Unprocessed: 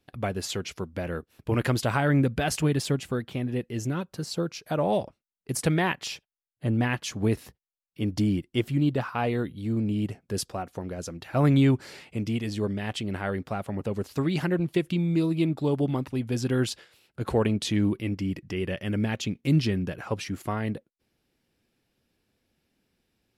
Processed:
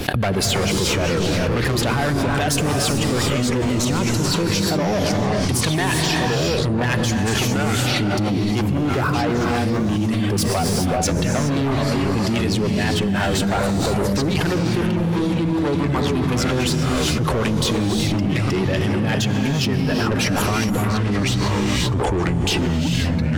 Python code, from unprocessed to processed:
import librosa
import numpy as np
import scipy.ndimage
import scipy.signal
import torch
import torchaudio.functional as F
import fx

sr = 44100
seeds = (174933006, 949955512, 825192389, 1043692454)

p1 = fx.dereverb_blind(x, sr, rt60_s=1.9)
p2 = fx.rider(p1, sr, range_db=10, speed_s=0.5)
p3 = p1 + F.gain(torch.from_numpy(p2), 1.5).numpy()
p4 = fx.dmg_crackle(p3, sr, seeds[0], per_s=98.0, level_db=-34.0, at=(9.0, 9.86), fade=0.02)
p5 = 10.0 ** (-23.0 / 20.0) * np.tanh(p4 / 10.0 ** (-23.0 / 20.0))
p6 = fx.harmonic_tremolo(p5, sr, hz=6.1, depth_pct=50, crossover_hz=670.0)
p7 = p6 + fx.echo_single(p6, sr, ms=122, db=-22.5, dry=0)
p8 = fx.rev_gated(p7, sr, seeds[1], gate_ms=440, shape='rising', drr_db=3.0)
p9 = fx.echo_pitch(p8, sr, ms=271, semitones=-4, count=2, db_per_echo=-6.0)
p10 = fx.env_flatten(p9, sr, amount_pct=100)
y = F.gain(torch.from_numpy(p10), 2.0).numpy()